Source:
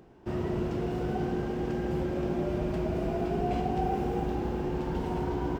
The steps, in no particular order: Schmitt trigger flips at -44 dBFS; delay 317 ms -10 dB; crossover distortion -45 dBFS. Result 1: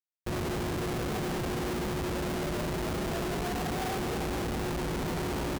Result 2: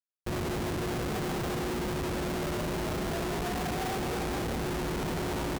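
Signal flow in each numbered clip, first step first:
delay > crossover distortion > Schmitt trigger; crossover distortion > delay > Schmitt trigger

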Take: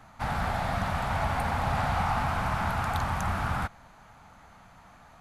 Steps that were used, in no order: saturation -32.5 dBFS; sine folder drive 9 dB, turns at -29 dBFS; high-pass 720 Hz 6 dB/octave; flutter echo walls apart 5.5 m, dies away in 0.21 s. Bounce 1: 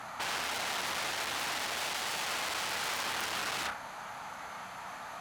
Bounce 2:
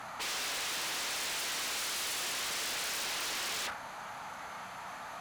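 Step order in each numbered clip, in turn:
flutter echo > saturation > sine folder > high-pass; flutter echo > sine folder > high-pass > saturation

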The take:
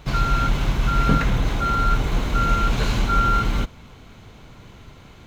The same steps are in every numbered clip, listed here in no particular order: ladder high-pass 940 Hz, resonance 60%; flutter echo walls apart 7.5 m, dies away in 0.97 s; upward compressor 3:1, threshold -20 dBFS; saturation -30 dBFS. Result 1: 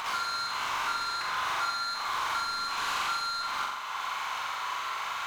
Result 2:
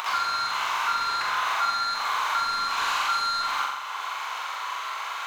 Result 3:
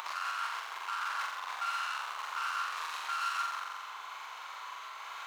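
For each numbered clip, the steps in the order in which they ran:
ladder high-pass > upward compressor > saturation > flutter echo; ladder high-pass > saturation > upward compressor > flutter echo; saturation > flutter echo > upward compressor > ladder high-pass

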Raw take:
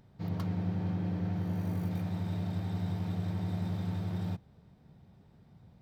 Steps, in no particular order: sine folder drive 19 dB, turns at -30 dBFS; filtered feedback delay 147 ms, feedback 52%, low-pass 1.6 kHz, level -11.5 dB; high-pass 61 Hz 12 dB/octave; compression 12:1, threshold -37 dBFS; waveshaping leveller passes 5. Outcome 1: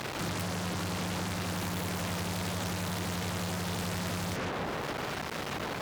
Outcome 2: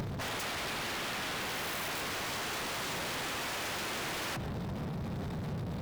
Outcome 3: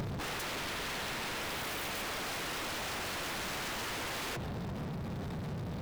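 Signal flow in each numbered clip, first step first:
filtered feedback delay > waveshaping leveller > compression > sine folder > high-pass; sine folder > high-pass > waveshaping leveller > compression > filtered feedback delay; high-pass > sine folder > waveshaping leveller > filtered feedback delay > compression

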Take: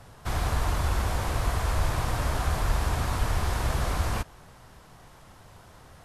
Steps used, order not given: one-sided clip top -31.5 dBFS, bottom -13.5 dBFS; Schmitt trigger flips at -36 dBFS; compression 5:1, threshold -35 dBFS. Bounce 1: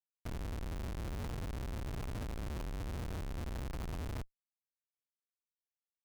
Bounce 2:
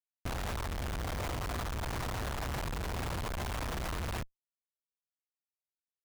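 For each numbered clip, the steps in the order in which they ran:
compression > one-sided clip > Schmitt trigger; one-sided clip > Schmitt trigger > compression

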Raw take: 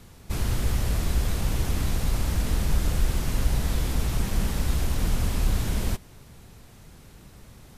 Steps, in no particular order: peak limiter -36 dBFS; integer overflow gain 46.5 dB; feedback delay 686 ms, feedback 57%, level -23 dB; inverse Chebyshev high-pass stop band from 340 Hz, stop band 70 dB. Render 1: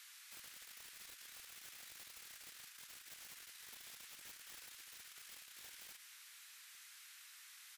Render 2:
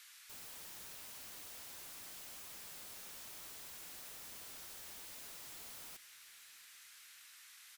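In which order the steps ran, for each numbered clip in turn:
peak limiter > inverse Chebyshev high-pass > integer overflow > feedback delay; inverse Chebyshev high-pass > peak limiter > integer overflow > feedback delay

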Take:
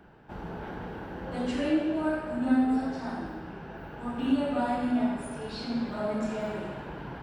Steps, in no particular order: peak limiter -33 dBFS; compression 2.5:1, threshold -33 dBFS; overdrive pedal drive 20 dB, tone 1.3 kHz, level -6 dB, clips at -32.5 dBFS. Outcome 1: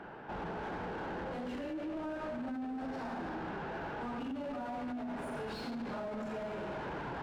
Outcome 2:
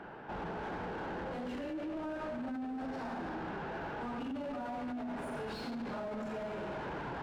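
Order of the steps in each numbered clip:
overdrive pedal > compression > peak limiter; overdrive pedal > peak limiter > compression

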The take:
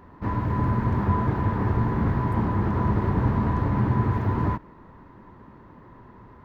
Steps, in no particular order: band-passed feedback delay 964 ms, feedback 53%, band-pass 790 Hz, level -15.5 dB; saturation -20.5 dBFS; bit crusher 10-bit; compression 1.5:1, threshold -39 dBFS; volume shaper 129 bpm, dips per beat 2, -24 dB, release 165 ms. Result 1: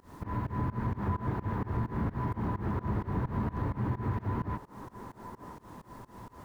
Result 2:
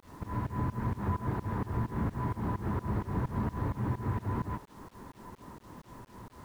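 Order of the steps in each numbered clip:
bit crusher > band-passed feedback delay > volume shaper > compression > saturation; compression > saturation > band-passed feedback delay > volume shaper > bit crusher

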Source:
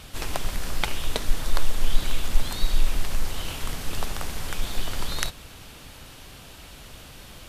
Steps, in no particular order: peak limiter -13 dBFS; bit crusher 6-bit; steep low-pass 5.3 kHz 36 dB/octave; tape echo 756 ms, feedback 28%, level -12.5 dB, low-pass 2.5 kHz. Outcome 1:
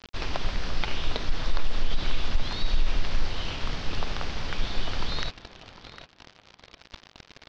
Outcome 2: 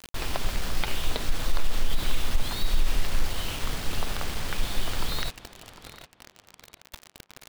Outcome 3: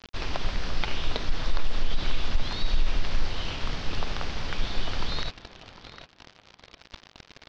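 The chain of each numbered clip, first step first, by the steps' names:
bit crusher > steep low-pass > tape echo > peak limiter; steep low-pass > bit crusher > peak limiter > tape echo; bit crusher > tape echo > peak limiter > steep low-pass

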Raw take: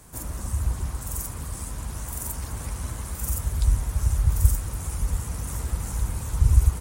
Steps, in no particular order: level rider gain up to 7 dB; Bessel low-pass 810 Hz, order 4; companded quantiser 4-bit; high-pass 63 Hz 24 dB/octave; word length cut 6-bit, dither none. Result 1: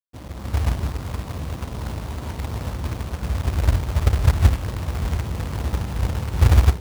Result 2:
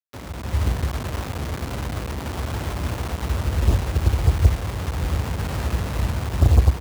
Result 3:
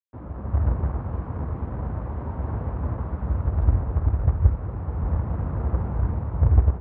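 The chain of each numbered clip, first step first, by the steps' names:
high-pass > word length cut > Bessel low-pass > companded quantiser > level rider; companded quantiser > Bessel low-pass > word length cut > high-pass > level rider; word length cut > level rider > high-pass > companded quantiser > Bessel low-pass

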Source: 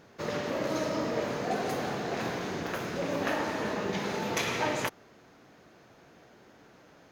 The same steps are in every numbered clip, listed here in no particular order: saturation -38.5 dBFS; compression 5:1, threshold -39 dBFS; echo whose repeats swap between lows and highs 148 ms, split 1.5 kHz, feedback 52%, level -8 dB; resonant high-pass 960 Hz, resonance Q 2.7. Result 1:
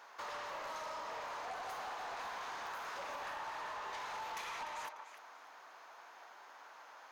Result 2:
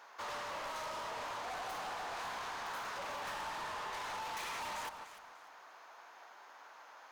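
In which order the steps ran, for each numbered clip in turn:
resonant high-pass > compression > echo whose repeats swap between lows and highs > saturation; resonant high-pass > saturation > echo whose repeats swap between lows and highs > compression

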